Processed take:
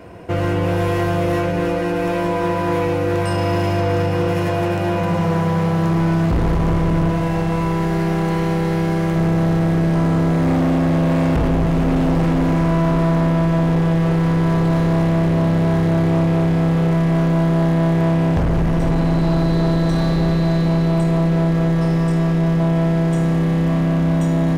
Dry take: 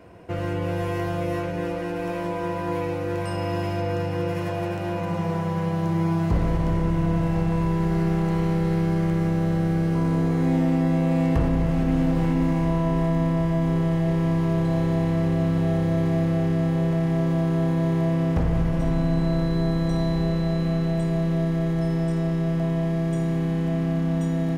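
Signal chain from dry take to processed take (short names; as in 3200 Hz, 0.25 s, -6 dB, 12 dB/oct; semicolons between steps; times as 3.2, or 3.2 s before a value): 7.1–9.16 low shelf 250 Hz -8 dB; overloaded stage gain 23 dB; gain +9 dB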